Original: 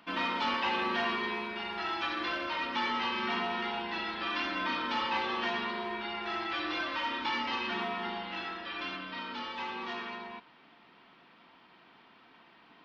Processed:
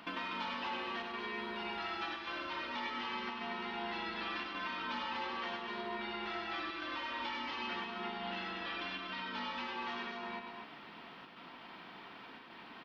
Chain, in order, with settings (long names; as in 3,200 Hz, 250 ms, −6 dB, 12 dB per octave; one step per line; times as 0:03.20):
downward compressor, threshold −46 dBFS, peak gain reduction 17.5 dB
square-wave tremolo 0.88 Hz, depth 60%, duty 90%
loudspeakers that aren't time-aligned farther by 34 metres −5 dB, 83 metres −5 dB
level +5.5 dB